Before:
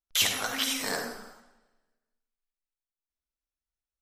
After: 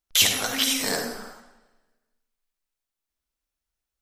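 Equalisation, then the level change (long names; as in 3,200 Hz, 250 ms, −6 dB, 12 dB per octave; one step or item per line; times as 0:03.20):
dynamic equaliser 1,200 Hz, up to −6 dB, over −43 dBFS, Q 0.87
+7.0 dB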